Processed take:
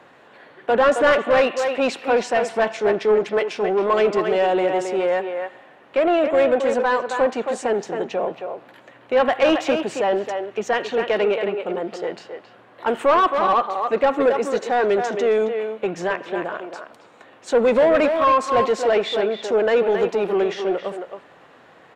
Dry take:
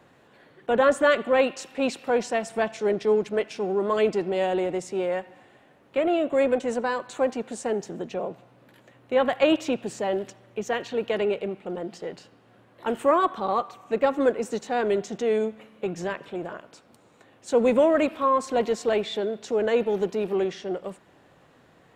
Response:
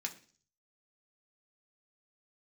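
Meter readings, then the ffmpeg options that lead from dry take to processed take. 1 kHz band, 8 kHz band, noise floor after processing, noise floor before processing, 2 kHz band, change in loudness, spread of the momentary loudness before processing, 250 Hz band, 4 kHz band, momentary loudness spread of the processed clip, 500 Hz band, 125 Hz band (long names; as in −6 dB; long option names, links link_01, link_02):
+7.0 dB, +2.0 dB, −50 dBFS, −58 dBFS, +6.5 dB, +5.0 dB, 12 LU, +2.0 dB, +5.5 dB, 11 LU, +5.5 dB, +1.0 dB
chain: -filter_complex "[0:a]asplit=2[link_01][link_02];[link_02]adelay=270,highpass=300,lowpass=3400,asoftclip=type=hard:threshold=-17dB,volume=-7dB[link_03];[link_01][link_03]amix=inputs=2:normalize=0,asplit=2[link_04][link_05];[link_05]highpass=frequency=720:poles=1,volume=17dB,asoftclip=type=tanh:threshold=-7dB[link_06];[link_04][link_06]amix=inputs=2:normalize=0,lowpass=frequency=2300:poles=1,volume=-6dB"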